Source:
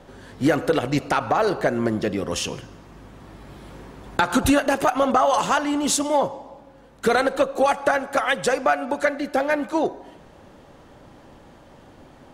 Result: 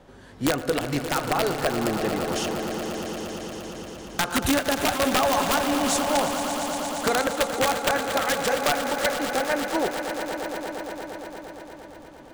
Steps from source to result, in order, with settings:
wrap-around overflow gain 10 dB
echo that builds up and dies away 116 ms, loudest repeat 5, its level −11.5 dB
level −4.5 dB

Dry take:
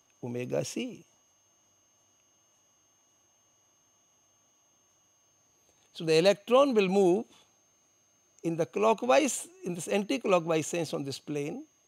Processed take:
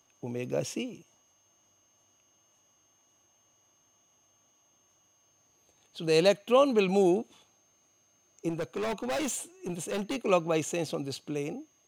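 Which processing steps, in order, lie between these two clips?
0:08.49–0:10.16: gain into a clipping stage and back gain 29 dB

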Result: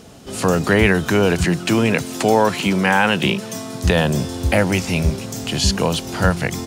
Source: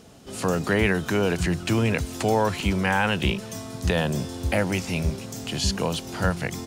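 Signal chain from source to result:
0:01.44–0:03.84: high-pass filter 130 Hz 24 dB per octave
level +7 dB

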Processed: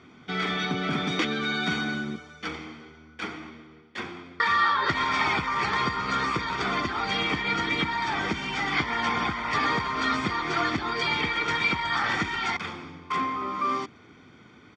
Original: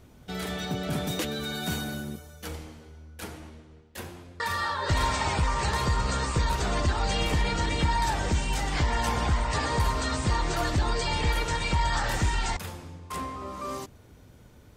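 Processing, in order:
comb filter 0.9 ms, depth 70%
downward compressor, threshold −23 dBFS, peak gain reduction 7.5 dB
loudspeaker in its box 280–4,500 Hz, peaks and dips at 920 Hz −8 dB, 1,700 Hz +7 dB, 4,100 Hz −6 dB
level +7 dB

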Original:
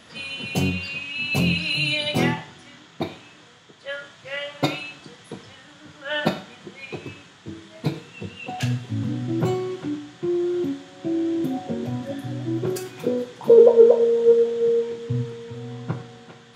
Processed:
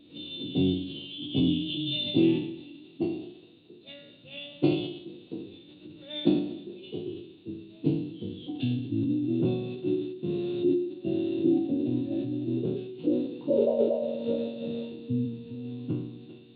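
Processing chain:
peak hold with a decay on every bin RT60 0.75 s
formant resonators in series i
on a send: feedback echo with a high-pass in the loop 214 ms, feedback 55%, high-pass 300 Hz, level −20 dB
on the sum: formants moved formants +3 semitones
level +4.5 dB

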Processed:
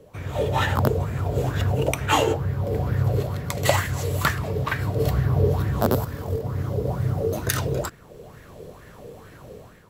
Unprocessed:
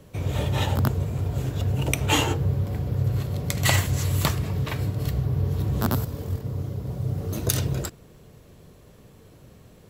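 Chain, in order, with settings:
automatic gain control gain up to 10 dB
auto-filter bell 2.2 Hz 440–1,800 Hz +16 dB
level −6 dB

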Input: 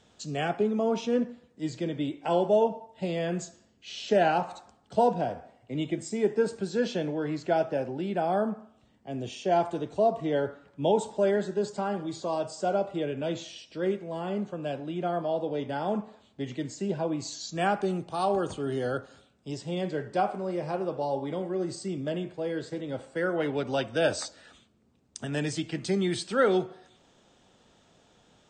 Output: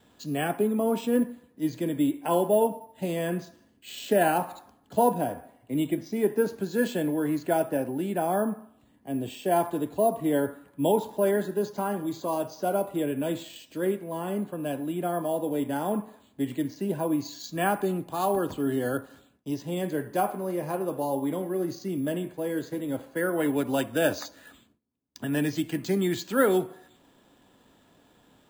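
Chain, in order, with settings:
noise gate with hold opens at −56 dBFS
hollow resonant body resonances 280/1,000/1,700 Hz, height 8 dB
bad sample-rate conversion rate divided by 4×, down filtered, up hold

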